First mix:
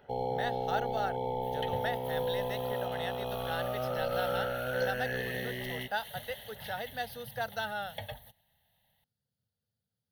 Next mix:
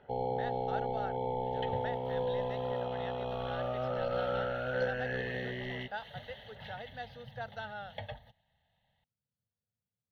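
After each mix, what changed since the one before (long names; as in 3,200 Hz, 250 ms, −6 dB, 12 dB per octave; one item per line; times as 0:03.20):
speech −5.5 dB
master: add high-frequency loss of the air 190 metres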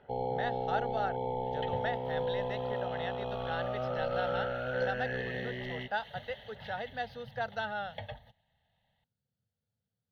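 speech +6.5 dB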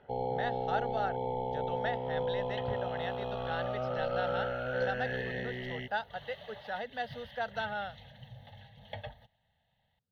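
second sound: entry +0.95 s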